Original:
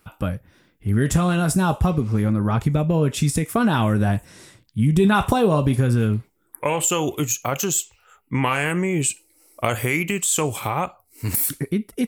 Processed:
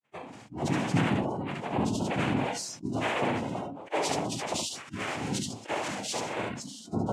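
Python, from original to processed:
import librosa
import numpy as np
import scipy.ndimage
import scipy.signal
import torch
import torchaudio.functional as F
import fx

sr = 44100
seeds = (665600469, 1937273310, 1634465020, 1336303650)

p1 = fx.vocoder_arp(x, sr, chord='minor triad', root=50, every_ms=332)
p2 = fx.rev_fdn(p1, sr, rt60_s=0.65, lf_ratio=1.35, hf_ratio=0.4, size_ms=20.0, drr_db=14.0)
p3 = fx.stretch_vocoder_free(p2, sr, factor=0.59)
p4 = fx.bass_treble(p3, sr, bass_db=-12, treble_db=9)
p5 = fx.noise_vocoder(p4, sr, seeds[0], bands=4)
p6 = fx.low_shelf(p5, sr, hz=180.0, db=-5.0)
p7 = p6 + fx.room_early_taps(p6, sr, ms=(35, 71), db=(-12.0, -4.5), dry=0)
p8 = fx.noise_reduce_blind(p7, sr, reduce_db=20)
y = fx.sustainer(p8, sr, db_per_s=39.0)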